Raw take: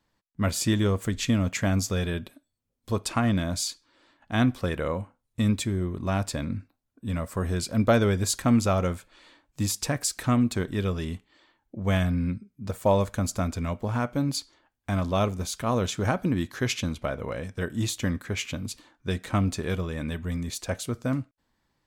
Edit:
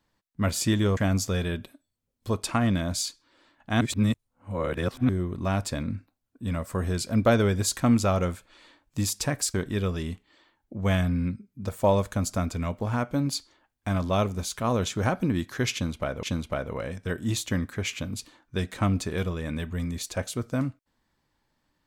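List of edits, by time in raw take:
0:00.97–0:01.59: remove
0:04.43–0:05.71: reverse
0:10.16–0:10.56: remove
0:16.75–0:17.25: repeat, 2 plays

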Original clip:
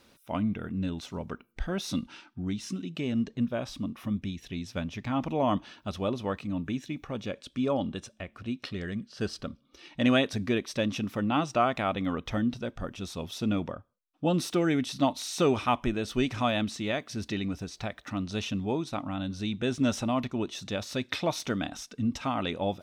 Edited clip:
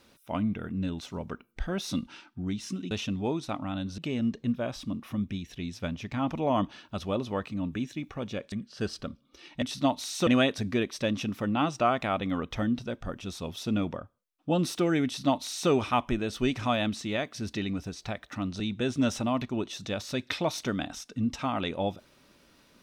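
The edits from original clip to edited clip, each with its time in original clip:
0:07.45–0:08.92: remove
0:14.80–0:15.45: duplicate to 0:10.02
0:18.35–0:19.42: move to 0:02.91

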